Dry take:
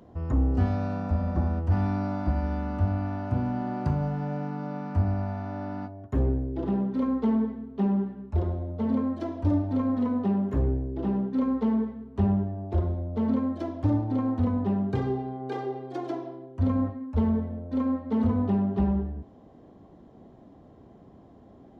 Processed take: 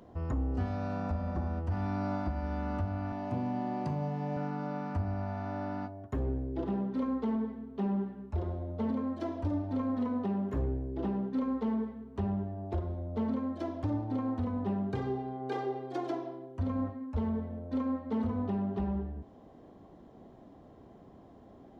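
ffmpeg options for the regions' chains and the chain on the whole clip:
-filter_complex "[0:a]asettb=1/sr,asplit=3[s0][s1][s2];[s0]atrim=end=3.124[s3];[s1]atrim=start=3.12:end=4.37,asetpts=PTS-STARTPTS,afade=t=in:d=0.004:c=qsin,afade=t=out:st=1.246:d=0.004:c=qsin,highpass=f=120:w=0.5412,highpass=f=120:w=1.3066,equalizer=f=1400:w=6.1:g=-13.5[s4];[s2]atrim=start=4.366[s5];[s3][s4]acrossfade=d=0.004:c1=hsin:c2=qsin[s6];[s6][s5]acrossfade=d=0.004:c1=qsin:c2=hsin,equalizer=f=120:w=0.38:g=-4,alimiter=limit=0.0631:level=0:latency=1:release=461"

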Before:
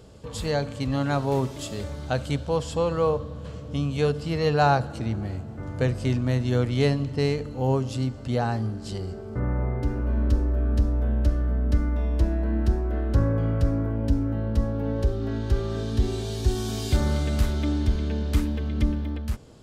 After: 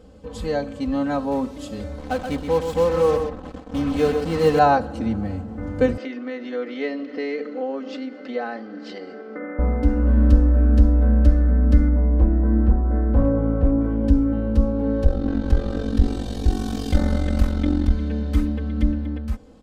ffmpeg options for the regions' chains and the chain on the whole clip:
-filter_complex "[0:a]asettb=1/sr,asplit=3[s0][s1][s2];[s0]atrim=end=1.984[s3];[s1]atrim=start=1.98:end=4.59,asetpts=PTS-STARTPTS,afade=t=in:d=0.004:c=qsin,afade=t=out:st=2.606:d=0.004:c=qsin,acrusher=bits=4:mix=0:aa=0.5,aecho=1:1:127:0.447,atrim=end_sample=115101[s4];[s2]atrim=start=4.586[s5];[s3][s4]acrossfade=d=0.004:c1=hsin:c2=qsin[s6];[s6][s5]acrossfade=d=0.004:c1=qsin:c2=hsin,asettb=1/sr,asplit=3[s7][s8][s9];[s7]atrim=end=5.974[s10];[s8]atrim=start=5.97:end=9.59,asetpts=PTS-STARTPTS,afade=t=in:d=0.004:c=qsin,afade=t=out:st=3.616:d=0.004:c=qsin,acompressor=threshold=0.0398:ratio=3:attack=3.2:release=140:knee=1:detection=peak,highpass=f=300:w=0.5412,highpass=f=300:w=1.3066,equalizer=f=380:t=q:w=4:g=3,equalizer=f=920:t=q:w=4:g=-9,equalizer=f=1400:t=q:w=4:g=3,equalizer=f=2000:t=q:w=4:g=9,lowpass=f=5100:w=0.5412,lowpass=f=5100:w=1.3066[s11];[s9]atrim=start=9.586[s12];[s10][s11]acrossfade=d=0.004:c1=hsin:c2=qsin[s13];[s13][s12]acrossfade=d=0.004:c1=qsin:c2=hsin,asettb=1/sr,asplit=3[s14][s15][s16];[s14]atrim=end=11.884[s17];[s15]atrim=start=11.88:end=13.81,asetpts=PTS-STARTPTS,afade=t=in:d=0.004:c=qsin,afade=t=out:st=1.926:d=0.004:c=qsin,lowpass=1400,asoftclip=type=hard:threshold=0.158[s18];[s16]atrim=start=13.806[s19];[s17][s18]acrossfade=d=0.004:c1=hsin:c2=qsin[s20];[s20][s19]acrossfade=d=0.004:c1=qsin:c2=hsin,asettb=1/sr,asplit=3[s21][s22][s23];[s21]atrim=end=15.044[s24];[s22]atrim=start=15.04:end=17.91,asetpts=PTS-STARTPTS,afade=t=in:d=0.004:c=qsin,afade=t=out:st=2.866:d=0.004:c=qsin,acontrast=31,tremolo=f=45:d=0.889[s25];[s23]atrim=start=17.906[s26];[s24][s25]acrossfade=d=0.004:c1=hsin:c2=qsin[s27];[s27][s26]acrossfade=d=0.004:c1=qsin:c2=hsin,highshelf=f=2200:g=-10,aecho=1:1:3.9:0.93,dynaudnorm=f=550:g=17:m=3.76"

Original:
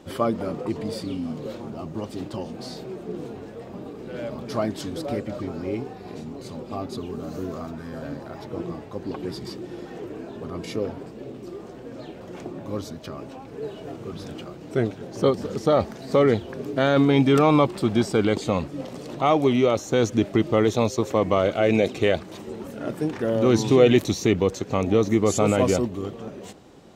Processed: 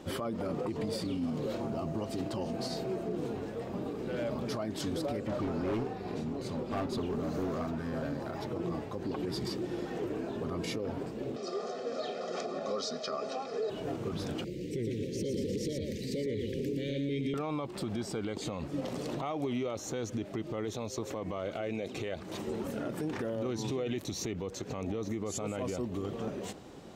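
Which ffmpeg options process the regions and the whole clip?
-filter_complex "[0:a]asettb=1/sr,asplit=3[s0][s1][s2];[s0]atrim=end=1.534[s3];[s1]atrim=start=1.53:end=3.16,asetpts=PTS-STARTPTS,afade=t=in:d=0.004:c=qsin,afade=t=out:st=1.626:d=0.004:c=qsin,bandreject=f=3500:w=19,aeval=exprs='val(0)+0.00794*sin(2*PI*670*n/s)':c=same[s4];[s2]atrim=start=3.156[s5];[s3][s4]acrossfade=d=0.004:c1=hsin:c2=qsin[s6];[s6][s5]acrossfade=d=0.004:c1=qsin:c2=hsin,asettb=1/sr,asplit=3[s7][s8][s9];[s7]atrim=end=5.274[s10];[s8]atrim=start=5.27:end=8.05,asetpts=PTS-STARTPTS,afade=t=in:d=0.004:c=qsin,afade=t=out:st=2.776:d=0.004:c=qsin,highshelf=f=5600:g=-6,asoftclip=type=hard:threshold=0.0355[s11];[s9]atrim=start=8.046[s12];[s10][s11]acrossfade=d=0.004:c1=hsin:c2=qsin[s13];[s13][s12]acrossfade=d=0.004:c1=qsin:c2=hsin,asettb=1/sr,asplit=3[s14][s15][s16];[s14]atrim=end=11.364[s17];[s15]atrim=start=11.36:end=13.7,asetpts=PTS-STARTPTS,afade=t=in:d=0.004:c=qsin,afade=t=out:st=2.336:d=0.004:c=qsin,highpass=f=270:w=0.5412,highpass=f=270:w=1.3066,equalizer=f=550:t=q:w=4:g=-6,equalizer=f=930:t=q:w=4:g=-7,equalizer=f=1900:t=q:w=4:g=-6,equalizer=f=2800:t=q:w=4:g=-8,equalizer=f=4900:t=q:w=4:g=5,lowpass=f=6700:w=0.5412,lowpass=f=6700:w=1.3066,acontrast=33,aecho=1:1:1.6:0.99,atrim=end_sample=103194[s18];[s16]atrim=start=13.696[s19];[s17][s18]acrossfade=d=0.004:c1=hsin:c2=qsin[s20];[s20][s19]acrossfade=d=0.004:c1=qsin:c2=hsin,asettb=1/sr,asplit=3[s21][s22][s23];[s21]atrim=end=14.444[s24];[s22]atrim=start=14.44:end=17.34,asetpts=PTS-STARTPTS,afade=t=in:d=0.004:c=qsin,afade=t=out:st=2.896:d=0.004:c=qsin,acompressor=threshold=0.0562:ratio=12:attack=3.2:release=140:knee=1:detection=peak,asuperstop=centerf=1000:order=12:qfactor=0.72,aecho=1:1:116:0.596,atrim=end_sample=127890[s25];[s23]atrim=start=17.336[s26];[s24][s25]acrossfade=d=0.004:c1=hsin:c2=qsin[s27];[s27][s26]acrossfade=d=0.004:c1=qsin:c2=hsin,acompressor=threshold=0.0501:ratio=10,alimiter=level_in=1.26:limit=0.0631:level=0:latency=1:release=48,volume=0.794"

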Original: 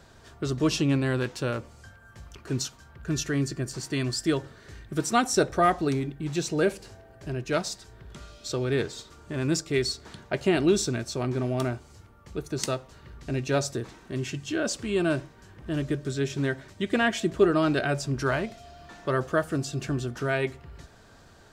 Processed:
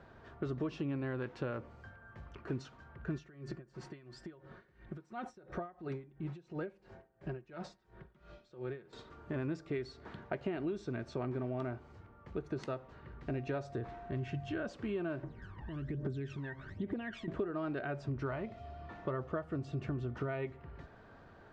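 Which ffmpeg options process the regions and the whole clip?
-filter_complex "[0:a]asettb=1/sr,asplit=3[s0][s1][s2];[s0]atrim=end=3.164[s3];[s1]atrim=start=3.16:end=8.93,asetpts=PTS-STARTPTS,afade=t=in:d=0.004:c=qsin,afade=t=out:st=5.766:d=0.004:c=qsin,aecho=1:1:5.5:0.47,atrim=end_sample=254457,acompressor=threshold=0.0316:ratio=10:attack=3.2:release=140:knee=1:detection=peak,aeval=exprs='val(0)*pow(10,-21*(0.5-0.5*cos(2*PI*2.9*n/s))/20)':c=same[s4];[s2]atrim=start=8.926[s5];[s3][s4]acrossfade=d=0.004:c1=hsin:c2=qsin[s6];[s6][s5]acrossfade=d=0.004:c1=qsin:c2=hsin,asettb=1/sr,asplit=3[s7][s8][s9];[s7]atrim=end=13.304[s10];[s8]atrim=start=13.3:end=14.71,asetpts=PTS-STARTPTS,afade=t=in:d=0.004:c=qsin,afade=t=out:st=1.406:d=0.004:c=qsin,asubboost=boost=9.5:cutoff=130,aeval=exprs='val(0)+0.00562*sin(2*PI*700*n/s)':c=same[s11];[s9]atrim=start=14.706[s12];[s10][s11]acrossfade=d=0.004:c1=hsin:c2=qsin[s13];[s13][s12]acrossfade=d=0.004:c1=qsin:c2=hsin,asettb=1/sr,asplit=3[s14][s15][s16];[s14]atrim=end=15.234[s17];[s15]atrim=start=15.23:end=17.28,asetpts=PTS-STARTPTS,afade=t=in:d=0.004:c=qsin,afade=t=out:st=2.046:d=0.004:c=qsin,bandreject=f=2400:w=23,acompressor=threshold=0.00891:ratio=2.5:attack=3.2:release=140:knee=1:detection=peak,aphaser=in_gain=1:out_gain=1:delay=1.2:decay=0.76:speed=1.2:type=triangular[s18];[s16]atrim=start=17.276[s19];[s17][s18]acrossfade=d=0.004:c1=hsin:c2=qsin[s20];[s20][s19]acrossfade=d=0.004:c1=qsin:c2=hsin,asettb=1/sr,asplit=3[s21][s22][s23];[s21]atrim=end=18.084[s24];[s22]atrim=start=18.08:end=20.52,asetpts=PTS-STARTPTS,afade=t=in:d=0.004:c=qsin,afade=t=out:st=2.436:d=0.004:c=qsin,equalizer=f=84:t=o:w=0.82:g=11.5,bandreject=f=1600:w=8.6[s25];[s23]atrim=start=20.516[s26];[s24][s25]acrossfade=d=0.004:c1=hsin:c2=qsin[s27];[s27][s26]acrossfade=d=0.004:c1=qsin:c2=hsin,lowshelf=f=100:g=-6,acompressor=threshold=0.0251:ratio=10,lowpass=1900,volume=0.841"

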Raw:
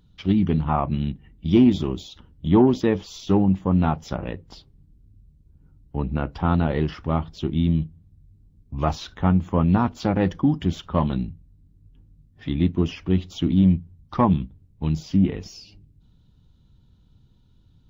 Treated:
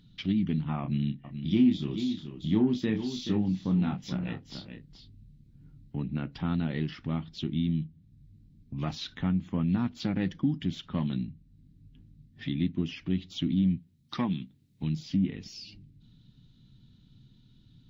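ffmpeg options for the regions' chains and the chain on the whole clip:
-filter_complex "[0:a]asettb=1/sr,asplit=3[s0][s1][s2];[s0]atrim=end=0.814[s3];[s1]atrim=start=0.81:end=5.96,asetpts=PTS-STARTPTS,afade=t=in:d=0.004:c=qsin,afade=t=out:st=5.146:d=0.004:c=qsin,asplit=2[s4][s5];[s5]adelay=28,volume=0.501[s6];[s4][s6]amix=inputs=2:normalize=0,atrim=end_sample=227115,aecho=1:1:428:0.224,atrim=end_sample=227115[s7];[s2]atrim=start=5.956[s8];[s3][s7]acrossfade=d=0.004:c1=hsin:c2=qsin[s9];[s9][s8]acrossfade=d=0.004:c1=qsin:c2=hsin,asettb=1/sr,asplit=3[s10][s11][s12];[s10]atrim=end=13.774[s13];[s11]atrim=start=13.77:end=14.83,asetpts=PTS-STARTPTS,afade=t=in:d=0.004:c=qsin,afade=t=out:st=1.056:d=0.004:c=qsin,highpass=f=250:p=1,highshelf=f=3800:g=10.5[s14];[s12]atrim=start=14.826[s15];[s13][s14]acrossfade=d=0.004:c1=hsin:c2=qsin[s16];[s16][s15]acrossfade=d=0.004:c1=qsin:c2=hsin,equalizer=f=125:t=o:w=1:g=7,equalizer=f=250:t=o:w=1:g=8,equalizer=f=500:t=o:w=1:g=-4,equalizer=f=1000:t=o:w=1:g=-5,equalizer=f=2000:t=o:w=1:g=7,equalizer=f=4000:t=o:w=1:g=9,acompressor=threshold=0.0126:ratio=1.5,equalizer=f=71:t=o:w=0.6:g=-11.5,volume=0.631"

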